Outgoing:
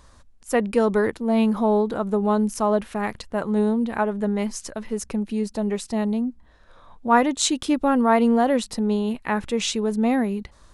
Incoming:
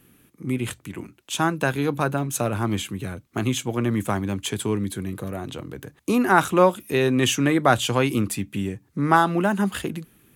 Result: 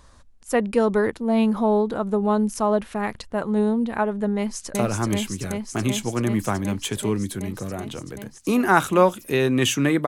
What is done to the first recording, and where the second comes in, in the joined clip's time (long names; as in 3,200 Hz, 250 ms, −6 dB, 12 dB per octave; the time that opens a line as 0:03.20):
outgoing
0:04.36–0:04.75: delay throw 380 ms, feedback 85%, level −1 dB
0:04.75: continue with incoming from 0:02.36